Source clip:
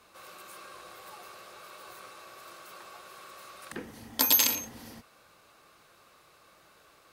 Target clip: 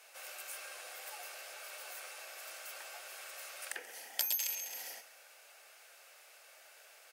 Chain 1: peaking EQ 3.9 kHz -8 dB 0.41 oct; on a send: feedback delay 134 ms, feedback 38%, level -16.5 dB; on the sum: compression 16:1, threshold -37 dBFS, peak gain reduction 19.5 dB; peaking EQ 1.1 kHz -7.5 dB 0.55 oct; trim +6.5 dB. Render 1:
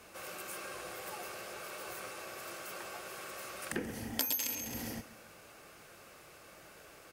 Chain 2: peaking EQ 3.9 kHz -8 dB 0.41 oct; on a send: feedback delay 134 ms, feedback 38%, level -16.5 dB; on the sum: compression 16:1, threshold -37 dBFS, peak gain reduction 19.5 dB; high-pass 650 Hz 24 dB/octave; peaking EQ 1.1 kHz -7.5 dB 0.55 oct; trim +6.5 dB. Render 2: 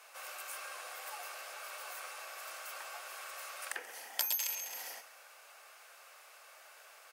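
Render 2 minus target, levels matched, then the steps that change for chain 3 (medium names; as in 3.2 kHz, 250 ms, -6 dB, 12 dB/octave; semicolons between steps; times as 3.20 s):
1 kHz band +5.5 dB
change: second peaking EQ 1.1 kHz -18 dB 0.55 oct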